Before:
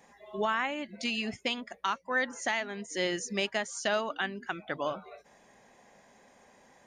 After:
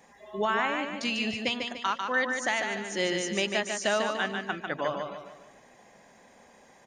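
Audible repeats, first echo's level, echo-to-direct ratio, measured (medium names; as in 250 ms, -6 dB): 4, -5.0 dB, -4.0 dB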